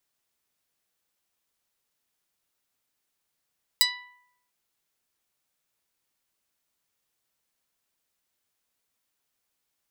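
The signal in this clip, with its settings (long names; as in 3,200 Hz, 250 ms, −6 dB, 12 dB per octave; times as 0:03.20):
Karplus-Strong string B5, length 0.69 s, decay 0.84 s, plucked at 0.09, medium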